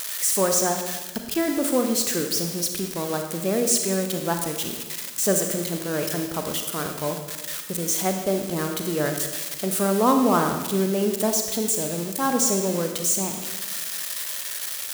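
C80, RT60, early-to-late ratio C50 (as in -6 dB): 7.5 dB, 1.2 s, 6.0 dB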